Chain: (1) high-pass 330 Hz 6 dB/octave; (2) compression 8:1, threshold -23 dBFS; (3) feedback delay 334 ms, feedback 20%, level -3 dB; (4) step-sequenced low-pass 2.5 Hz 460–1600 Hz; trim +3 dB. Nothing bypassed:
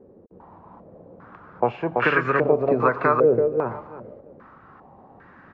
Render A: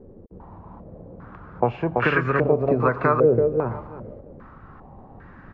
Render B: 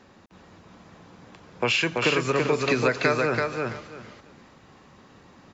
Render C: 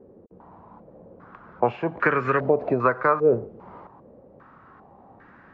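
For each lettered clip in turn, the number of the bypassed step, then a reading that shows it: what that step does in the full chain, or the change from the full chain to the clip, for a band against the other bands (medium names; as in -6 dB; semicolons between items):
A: 1, 125 Hz band +7.0 dB; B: 4, 1 kHz band -5.0 dB; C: 3, momentary loudness spread change -4 LU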